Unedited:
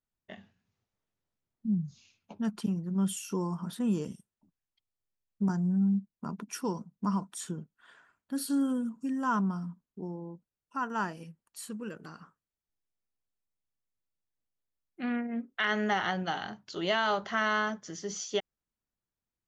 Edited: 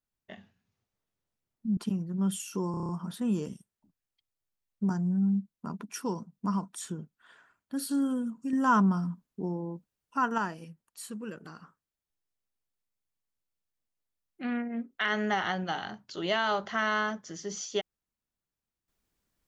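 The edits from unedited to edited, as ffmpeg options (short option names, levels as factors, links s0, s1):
-filter_complex "[0:a]asplit=10[s0][s1][s2][s3][s4][s5][s6][s7][s8][s9];[s0]atrim=end=1.772[s10];[s1]atrim=start=2.538:end=3.512[s11];[s2]atrim=start=3.478:end=3.512[s12];[s3]atrim=start=3.478:end=3.512[s13];[s4]atrim=start=3.478:end=3.512[s14];[s5]atrim=start=3.478:end=3.512[s15];[s6]atrim=start=3.478:end=3.512[s16];[s7]atrim=start=3.478:end=9.122[s17];[s8]atrim=start=9.118:end=10.972,asetpts=PTS-STARTPTS,volume=1.88[s18];[s9]atrim=start=10.968[s19];[s10][s11]acrossfade=d=0.004:c1=hsin:c2=hsin[s20];[s20][s12]acrossfade=d=0.004:c1=hsin:c2=hsin[s21];[s21][s13]acrossfade=d=0.004:c1=hsin:c2=hsin[s22];[s22][s14]acrossfade=d=0.004:c1=hsin:c2=hsin[s23];[s23][s15]acrossfade=d=0.004:c1=hsin:c2=hsin[s24];[s24][s16]acrossfade=d=0.004:c1=hsin:c2=hsin[s25];[s25][s17]acrossfade=d=0.004:c1=hsin:c2=hsin[s26];[s26][s18]acrossfade=d=0.004:c1=hsin:c2=hsin[s27];[s27][s19]acrossfade=d=0.004:c1=hsin:c2=hsin"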